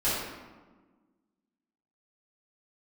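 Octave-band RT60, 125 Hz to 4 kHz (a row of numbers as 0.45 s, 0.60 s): 1.6 s, 2.0 s, 1.4 s, 1.3 s, 1.0 s, 0.75 s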